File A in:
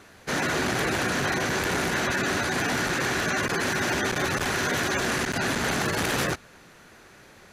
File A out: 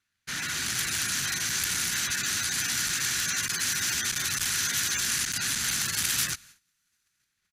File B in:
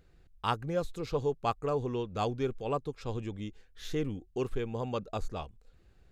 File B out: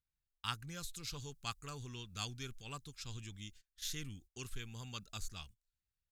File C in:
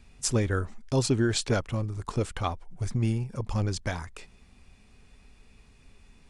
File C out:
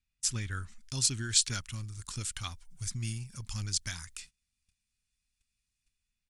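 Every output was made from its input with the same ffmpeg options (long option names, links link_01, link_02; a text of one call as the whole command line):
ffmpeg -i in.wav -filter_complex "[0:a]agate=range=-23dB:threshold=-47dB:ratio=16:detection=peak,firequalizer=gain_entry='entry(110,0);entry(490,-18);entry(1400,2);entry(3100,7)':delay=0.05:min_phase=1,acrossover=split=5000[link_01][link_02];[link_02]dynaudnorm=framelen=120:gausssize=9:maxgain=11dB[link_03];[link_01][link_03]amix=inputs=2:normalize=0,volume=-8.5dB" out.wav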